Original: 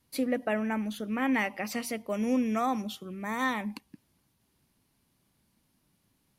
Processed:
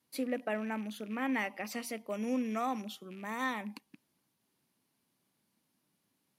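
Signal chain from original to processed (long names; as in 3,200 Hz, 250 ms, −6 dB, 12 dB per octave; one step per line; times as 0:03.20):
loose part that buzzes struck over −41 dBFS, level −38 dBFS
high-pass filter 180 Hz 12 dB per octave
level −5 dB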